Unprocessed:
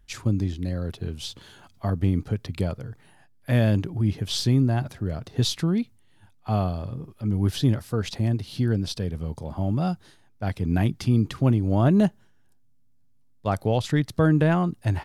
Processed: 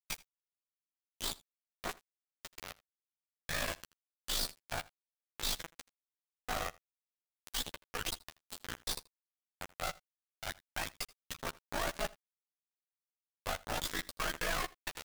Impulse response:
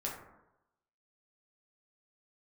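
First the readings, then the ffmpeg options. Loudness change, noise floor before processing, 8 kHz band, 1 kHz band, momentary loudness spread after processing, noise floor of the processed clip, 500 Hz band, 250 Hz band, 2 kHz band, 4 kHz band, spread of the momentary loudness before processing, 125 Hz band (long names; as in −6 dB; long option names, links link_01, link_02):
−14.5 dB, −57 dBFS, −1.5 dB, −9.0 dB, 14 LU, below −85 dBFS, −16.5 dB, −28.5 dB, −4.0 dB, −5.5 dB, 12 LU, −31.0 dB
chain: -filter_complex "[0:a]highpass=1100,afftfilt=real='re*gte(hypot(re,im),0.02)':imag='im*gte(hypot(re,im),0.02)':win_size=1024:overlap=0.75,asoftclip=type=tanh:threshold=-32.5dB,flanger=delay=4:depth=6.8:regen=-23:speed=1:shape=triangular,acrusher=bits=4:dc=4:mix=0:aa=0.000001,aeval=exprs='val(0)*sin(2*PI*26*n/s)':channel_layout=same,asplit=2[link_01][link_02];[link_02]adelay=12,volume=-5.5dB[link_03];[link_01][link_03]amix=inputs=2:normalize=0,aecho=1:1:81:0.075,volume=10dB"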